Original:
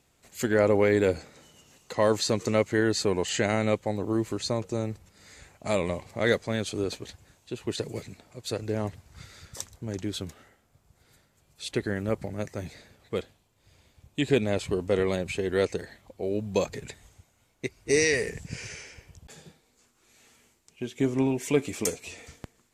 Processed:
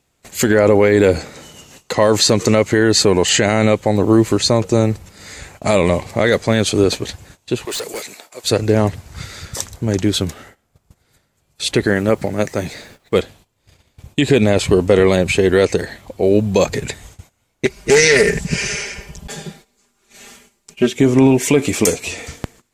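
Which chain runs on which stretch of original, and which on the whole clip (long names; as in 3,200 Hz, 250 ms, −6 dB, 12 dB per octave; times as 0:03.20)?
0:07.65–0:08.44: high-pass filter 540 Hz + high-shelf EQ 7,700 Hz +9.5 dB + hard clipping −37.5 dBFS
0:11.86–0:13.15: low-shelf EQ 110 Hz −11 dB + background noise pink −70 dBFS
0:17.65–0:20.93: comb filter 5 ms, depth 95% + highs frequency-modulated by the lows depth 0.22 ms
whole clip: noise gate −57 dBFS, range −15 dB; boost into a limiter +17 dB; level −1 dB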